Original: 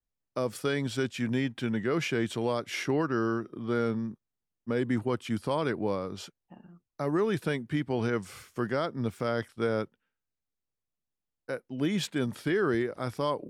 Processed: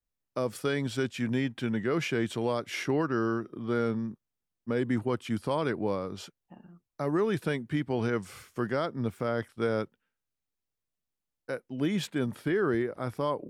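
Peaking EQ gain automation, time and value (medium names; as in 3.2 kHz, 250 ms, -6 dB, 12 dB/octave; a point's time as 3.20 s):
peaking EQ 5.4 kHz 1.9 oct
8.85 s -1.5 dB
9.32 s -7.5 dB
9.68 s 0 dB
11.62 s 0 dB
12.42 s -7.5 dB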